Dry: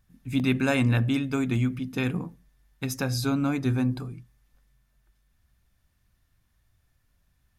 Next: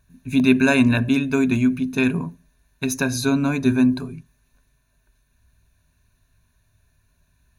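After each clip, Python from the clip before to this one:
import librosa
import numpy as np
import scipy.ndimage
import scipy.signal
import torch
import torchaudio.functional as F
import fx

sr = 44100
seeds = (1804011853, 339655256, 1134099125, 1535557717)

y = fx.ripple_eq(x, sr, per_octave=1.5, db=12)
y = y * librosa.db_to_amplitude(4.5)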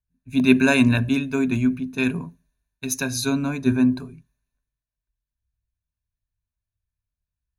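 y = fx.band_widen(x, sr, depth_pct=70)
y = y * librosa.db_to_amplitude(-2.5)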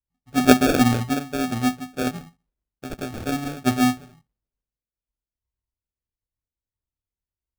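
y = fx.sample_hold(x, sr, seeds[0], rate_hz=1000.0, jitter_pct=0)
y = fx.upward_expand(y, sr, threshold_db=-32.0, expansion=1.5)
y = y * librosa.db_to_amplitude(2.0)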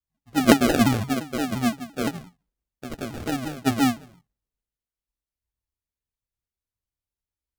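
y = fx.vibrato_shape(x, sr, shape='saw_down', rate_hz=5.8, depth_cents=250.0)
y = y * librosa.db_to_amplitude(-1.5)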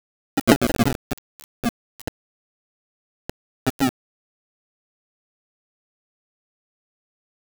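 y = np.where(np.abs(x) >= 10.0 ** (-17.5 / 20.0), x, 0.0)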